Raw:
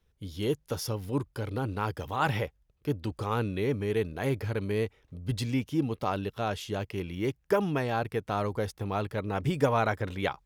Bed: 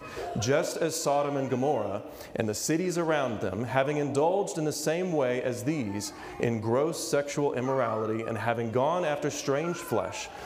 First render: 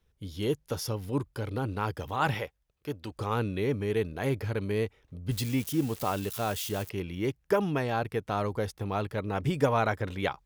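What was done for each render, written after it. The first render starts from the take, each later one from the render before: 2.34–3.16 s: bass shelf 360 Hz -9 dB; 5.31–6.90 s: zero-crossing glitches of -30 dBFS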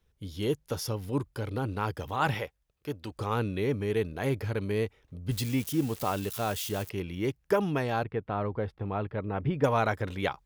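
8.04–9.64 s: distance through air 430 m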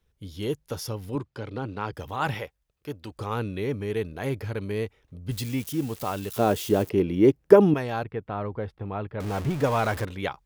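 1.15–1.93 s: band-pass 110–5600 Hz; 6.36–7.74 s: peaking EQ 330 Hz +14 dB 2.6 oct; 9.20–10.05 s: jump at every zero crossing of -30.5 dBFS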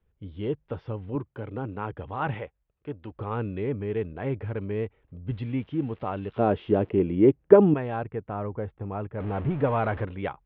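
steep low-pass 3.2 kHz 36 dB/octave; treble shelf 2.1 kHz -10 dB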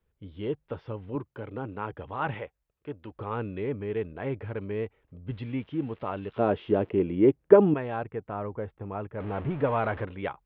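bass shelf 250 Hz -5.5 dB; band-stop 760 Hz, Q 22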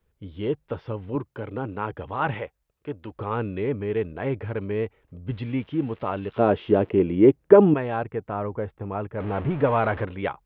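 trim +5 dB; peak limiter -1 dBFS, peak gain reduction 3 dB

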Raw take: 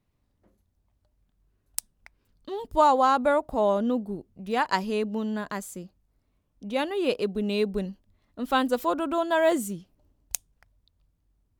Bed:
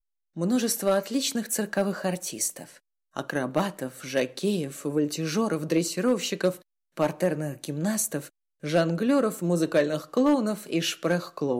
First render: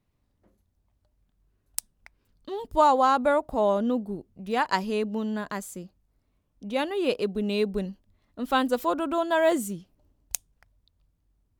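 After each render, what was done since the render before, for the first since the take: no audible change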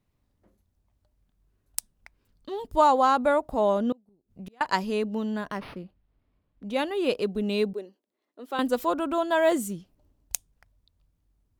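3.92–4.61 s: inverted gate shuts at -29 dBFS, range -31 dB; 5.45–6.70 s: decimation joined by straight lines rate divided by 6×; 7.73–8.59 s: ladder high-pass 310 Hz, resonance 50%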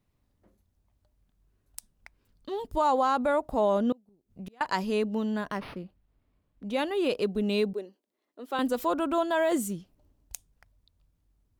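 peak limiter -16.5 dBFS, peak gain reduction 11 dB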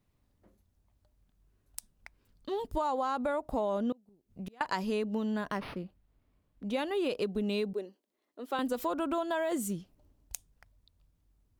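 compression 6:1, threshold -28 dBFS, peak gain reduction 8 dB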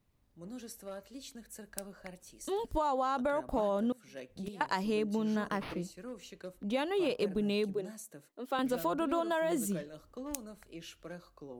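add bed -21 dB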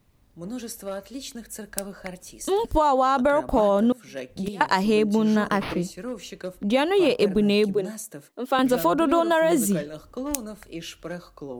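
trim +11.5 dB

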